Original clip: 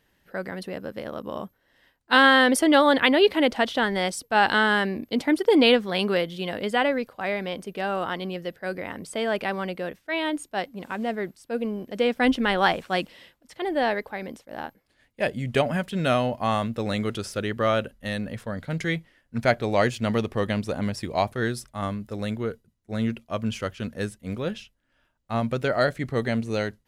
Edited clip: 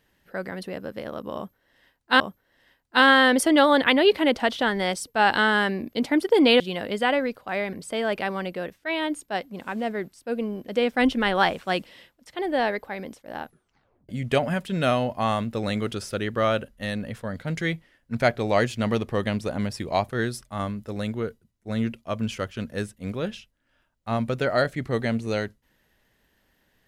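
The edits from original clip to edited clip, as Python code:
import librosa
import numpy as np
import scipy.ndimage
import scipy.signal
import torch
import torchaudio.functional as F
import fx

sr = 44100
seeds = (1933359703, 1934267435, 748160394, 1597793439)

y = fx.edit(x, sr, fx.repeat(start_s=1.36, length_s=0.84, count=2),
    fx.cut(start_s=5.76, length_s=0.56),
    fx.cut(start_s=7.45, length_s=1.51),
    fx.tape_stop(start_s=14.65, length_s=0.67), tone=tone)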